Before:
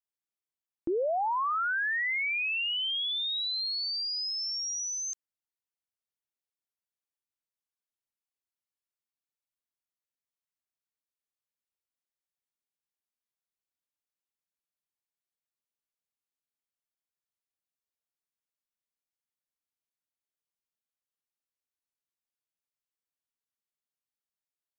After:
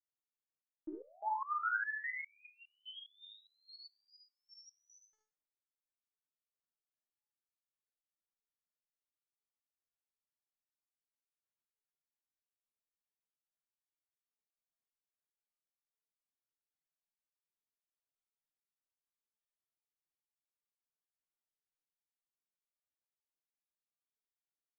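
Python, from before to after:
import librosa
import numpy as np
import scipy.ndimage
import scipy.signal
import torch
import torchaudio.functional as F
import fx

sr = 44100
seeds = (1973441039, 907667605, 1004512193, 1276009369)

p1 = scipy.signal.savgol_filter(x, 41, 4, mode='constant')
p2 = p1 + fx.room_early_taps(p1, sr, ms=(53, 74), db=(-3.5, -4.5), dry=0)
p3 = fx.resonator_held(p2, sr, hz=4.9, low_hz=110.0, high_hz=1200.0)
y = p3 * 10.0 ** (2.5 / 20.0)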